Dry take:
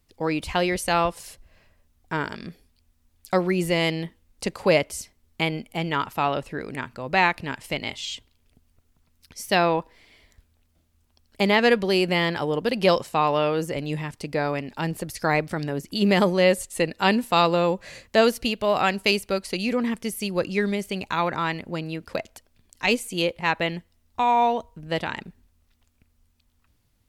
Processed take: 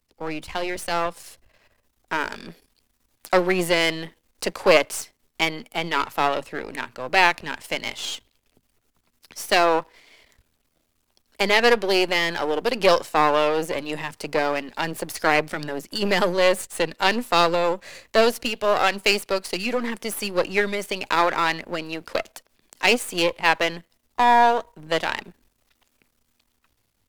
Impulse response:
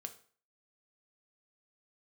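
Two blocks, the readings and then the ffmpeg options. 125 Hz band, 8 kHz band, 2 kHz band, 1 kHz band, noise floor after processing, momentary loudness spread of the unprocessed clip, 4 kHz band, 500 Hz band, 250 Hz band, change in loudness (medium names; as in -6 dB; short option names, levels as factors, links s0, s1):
-7.5 dB, +3.5 dB, +3.5 dB, +2.5 dB, -71 dBFS, 13 LU, +3.0 dB, +1.5 dB, -3.0 dB, +1.5 dB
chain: -filter_complex "[0:a]aeval=exprs='if(lt(val(0),0),0.251*val(0),val(0))':c=same,acrossover=split=280[s0][s1];[s0]flanger=delay=16.5:depth=3.2:speed=0.87[s2];[s1]dynaudnorm=f=660:g=5:m=3.76[s3];[s2][s3]amix=inputs=2:normalize=0,volume=0.891"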